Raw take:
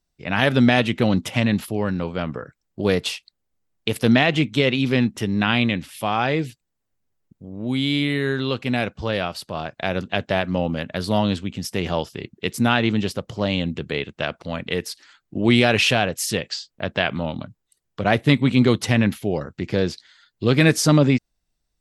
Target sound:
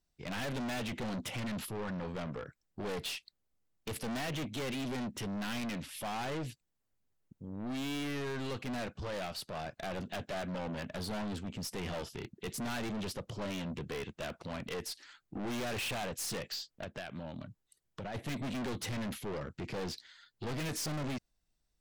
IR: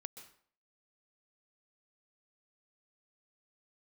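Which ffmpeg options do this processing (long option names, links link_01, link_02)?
-filter_complex "[0:a]asettb=1/sr,asplit=3[link_01][link_02][link_03];[link_01]atrim=end=11.174[link_04];[link_02]atrim=start=11.17:end=11.59,asetpts=PTS-STARTPTS,afade=type=in:duration=0.004:curve=qsin,afade=type=out:start_time=0.416:duration=0.004:curve=qsin,equalizer=frequency=3500:width=1.1:gain=-4.5[link_05];[link_03]atrim=start=11.586[link_06];[link_04][link_05]acrossfade=duration=0.004:curve1=hsin:curve2=qsin[link_07];[link_07][link_06]acrossfade=duration=0.004:curve1=qsin:curve2=hsin,asplit=3[link_08][link_09][link_10];[link_08]afade=type=out:start_time=16.83:duration=0.02[link_11];[link_09]acompressor=threshold=-29dB:ratio=10,afade=type=in:start_time=16.83:duration=0.02,afade=type=out:start_time=18.14:duration=0.02[link_12];[link_10]afade=type=in:start_time=18.14:duration=0.02[link_13];[link_11][link_12][link_13]amix=inputs=3:normalize=0,aeval=exprs='(tanh(35.5*val(0)+0.1)-tanh(0.1))/35.5':channel_layout=same,volume=-4.5dB"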